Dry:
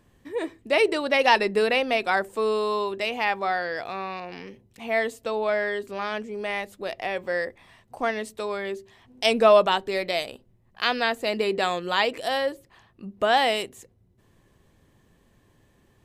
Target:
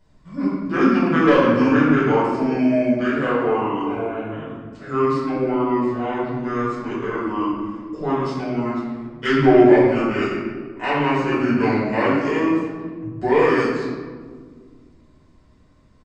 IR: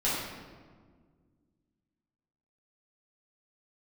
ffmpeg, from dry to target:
-filter_complex "[0:a]asetrate=26222,aresample=44100,atempo=1.68179,acontrast=80[s0];[1:a]atrim=start_sample=2205[s1];[s0][s1]afir=irnorm=-1:irlink=0,volume=0.251"

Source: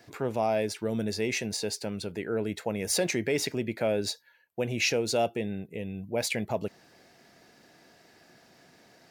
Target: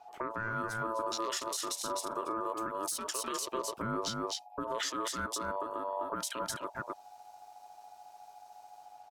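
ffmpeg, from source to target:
-filter_complex "[0:a]aeval=exprs='val(0)+0.00251*(sin(2*PI*50*n/s)+sin(2*PI*2*50*n/s)/2+sin(2*PI*3*50*n/s)/3+sin(2*PI*4*50*n/s)/4+sin(2*PI*5*50*n/s)/5)':c=same,acrossover=split=800|5900[s0][s1][s2];[s2]dynaudnorm=f=340:g=3:m=4.47[s3];[s0][s1][s3]amix=inputs=3:normalize=0,asplit=3[s4][s5][s6];[s4]afade=t=out:st=1.4:d=0.02[s7];[s5]asplit=2[s8][s9];[s9]adelay=45,volume=0.355[s10];[s8][s10]amix=inputs=2:normalize=0,afade=t=in:st=1.4:d=0.02,afade=t=out:st=2.24:d=0.02[s11];[s6]afade=t=in:st=2.24:d=0.02[s12];[s7][s11][s12]amix=inputs=3:normalize=0,afwtdn=0.0224,aecho=1:1:254:0.398,acompressor=threshold=0.0316:ratio=6,aeval=exprs='val(0)*sin(2*PI*780*n/s)':c=same,asettb=1/sr,asplit=3[s13][s14][s15];[s13]atrim=end=3.424[s16];[s14]atrim=start=3.42:end=4.84,asetpts=PTS-STARTPTS,afade=t=in:d=0.004:c=qsin,afade=t=out:st=1.416:d=0.004:c=qsin,lowshelf=f=390:g=9.5[s17];[s15]atrim=start=4.836[s18];[s16][s17]acrossfade=d=0.004:c1=hsin:c2=qsin[s19];[s19][s18]acrossfade=d=0.004:c1=qsin:c2=hsin,alimiter=level_in=1.88:limit=0.0631:level=0:latency=1:release=310,volume=0.531,lowshelf=f=170:g=-9.5,volume=2.24"

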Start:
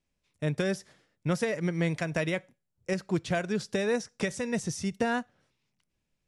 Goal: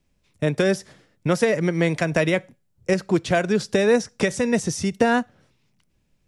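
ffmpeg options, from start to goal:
-filter_complex "[0:a]lowshelf=f=450:g=6,acrossover=split=280[s0][s1];[s0]acompressor=threshold=0.02:ratio=6[s2];[s2][s1]amix=inputs=2:normalize=0,volume=2.51"

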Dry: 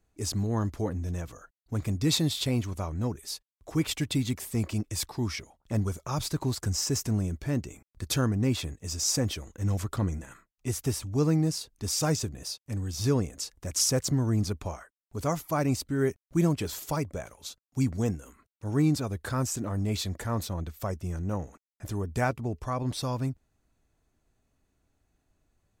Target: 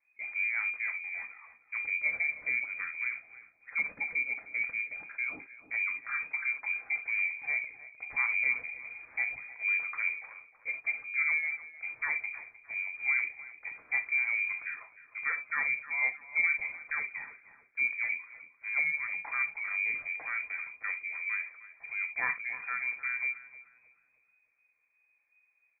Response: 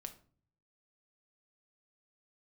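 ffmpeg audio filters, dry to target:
-filter_complex "[1:a]atrim=start_sample=2205,atrim=end_sample=3528[s0];[0:a][s0]afir=irnorm=-1:irlink=0,lowpass=f=2100:t=q:w=0.5098,lowpass=f=2100:t=q:w=0.6013,lowpass=f=2100:t=q:w=0.9,lowpass=f=2100:t=q:w=2.563,afreqshift=-2500,asplit=2[s1][s2];[s2]adelay=307,lowpass=f=1100:p=1,volume=0.282,asplit=2[s3][s4];[s4]adelay=307,lowpass=f=1100:p=1,volume=0.52,asplit=2[s5][s6];[s6]adelay=307,lowpass=f=1100:p=1,volume=0.52,asplit=2[s7][s8];[s8]adelay=307,lowpass=f=1100:p=1,volume=0.52,asplit=2[s9][s10];[s10]adelay=307,lowpass=f=1100:p=1,volume=0.52,asplit=2[s11][s12];[s12]adelay=307,lowpass=f=1100:p=1,volume=0.52[s13];[s1][s3][s5][s7][s9][s11][s13]amix=inputs=7:normalize=0"

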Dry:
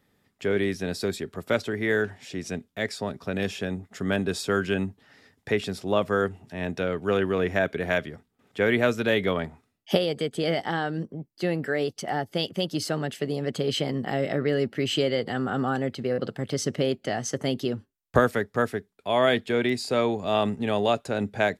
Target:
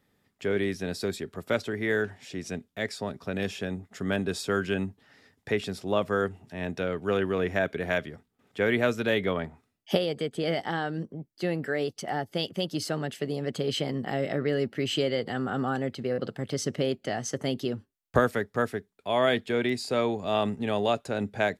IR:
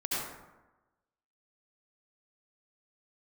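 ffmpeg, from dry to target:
-filter_complex "[0:a]asplit=3[s0][s1][s2];[s0]afade=t=out:st=9.18:d=0.02[s3];[s1]adynamicequalizer=threshold=0.00631:dfrequency=3200:dqfactor=0.7:tfrequency=3200:tqfactor=0.7:attack=5:release=100:ratio=0.375:range=2.5:mode=cutabove:tftype=highshelf,afade=t=in:st=9.18:d=0.02,afade=t=out:st=10.46:d=0.02[s4];[s2]afade=t=in:st=10.46:d=0.02[s5];[s3][s4][s5]amix=inputs=3:normalize=0,volume=0.75"

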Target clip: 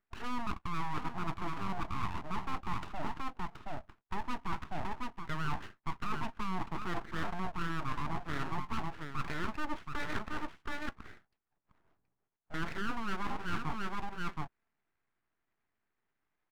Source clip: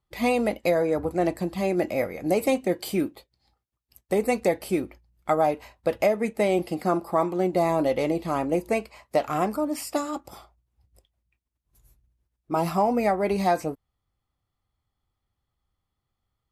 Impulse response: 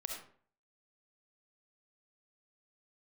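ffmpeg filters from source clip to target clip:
-filter_complex "[0:a]acrossover=split=5400[s0][s1];[s0]alimiter=limit=0.112:level=0:latency=1:release=26[s2];[s2][s1]amix=inputs=2:normalize=0,acrossover=split=410 2400:gain=0.0708 1 0.0794[s3][s4][s5];[s3][s4][s5]amix=inputs=3:normalize=0,aecho=1:1:725:0.355,areverse,acompressor=threshold=0.00794:ratio=6,areverse,highpass=56,adynamicsmooth=sensitivity=5:basefreq=1100,aeval=exprs='abs(val(0))':c=same,equalizer=f=530:w=3.4:g=-7.5,volume=3.98"

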